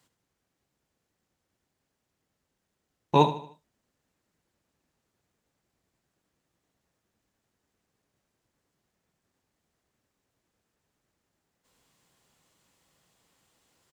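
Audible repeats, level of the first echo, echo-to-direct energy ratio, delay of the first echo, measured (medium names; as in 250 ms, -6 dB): 3, -13.0 dB, -12.0 dB, 76 ms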